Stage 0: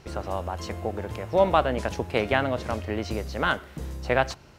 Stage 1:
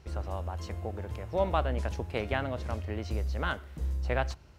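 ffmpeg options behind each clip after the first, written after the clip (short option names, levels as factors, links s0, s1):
-af "equalizer=f=62:w=1.3:g=13.5,volume=0.376"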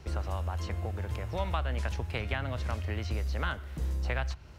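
-filter_complex "[0:a]acrossover=split=150|1100|3900[s0][s1][s2][s3];[s0]acompressor=threshold=0.0158:ratio=4[s4];[s1]acompressor=threshold=0.00501:ratio=4[s5];[s2]acompressor=threshold=0.01:ratio=4[s6];[s3]acompressor=threshold=0.00126:ratio=4[s7];[s4][s5][s6][s7]amix=inputs=4:normalize=0,volume=1.88"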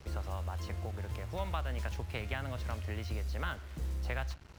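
-af "acrusher=bits=7:mix=0:aa=0.5,volume=0.596"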